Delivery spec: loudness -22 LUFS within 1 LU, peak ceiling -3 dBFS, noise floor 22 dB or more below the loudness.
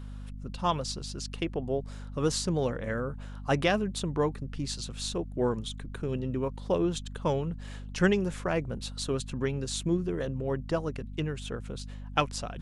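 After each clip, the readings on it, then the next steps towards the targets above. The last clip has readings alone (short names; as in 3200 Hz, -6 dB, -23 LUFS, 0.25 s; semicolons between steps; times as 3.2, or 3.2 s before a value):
hum 50 Hz; harmonics up to 250 Hz; hum level -38 dBFS; loudness -31.5 LUFS; peak -10.0 dBFS; loudness target -22.0 LUFS
-> notches 50/100/150/200/250 Hz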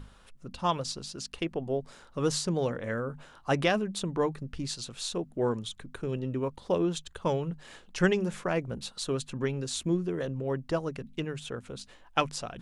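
hum none; loudness -32.0 LUFS; peak -11.0 dBFS; loudness target -22.0 LUFS
-> gain +10 dB; limiter -3 dBFS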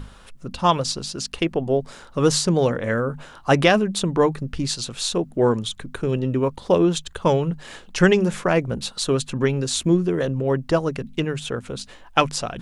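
loudness -22.0 LUFS; peak -3.0 dBFS; noise floor -46 dBFS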